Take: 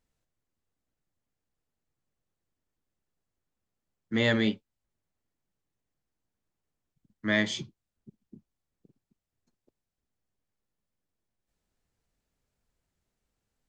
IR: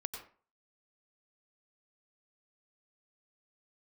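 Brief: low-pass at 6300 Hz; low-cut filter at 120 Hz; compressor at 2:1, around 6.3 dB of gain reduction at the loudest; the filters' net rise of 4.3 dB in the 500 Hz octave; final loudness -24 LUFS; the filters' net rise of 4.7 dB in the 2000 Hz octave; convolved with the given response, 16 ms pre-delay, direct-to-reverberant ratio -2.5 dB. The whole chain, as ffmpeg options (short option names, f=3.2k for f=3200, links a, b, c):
-filter_complex "[0:a]highpass=120,lowpass=6.3k,equalizer=f=500:t=o:g=5,equalizer=f=2k:t=o:g=5,acompressor=threshold=-28dB:ratio=2,asplit=2[a][b];[1:a]atrim=start_sample=2205,adelay=16[c];[b][c]afir=irnorm=-1:irlink=0,volume=3dB[d];[a][d]amix=inputs=2:normalize=0,volume=3.5dB"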